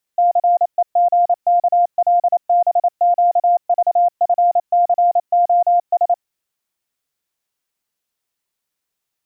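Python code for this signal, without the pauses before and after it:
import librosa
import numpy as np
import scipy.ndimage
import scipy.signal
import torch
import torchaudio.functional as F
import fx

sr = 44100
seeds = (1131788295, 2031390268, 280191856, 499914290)

y = fx.morse(sr, text='CEGKLBQVFCOS', wpm=28, hz=701.0, level_db=-10.0)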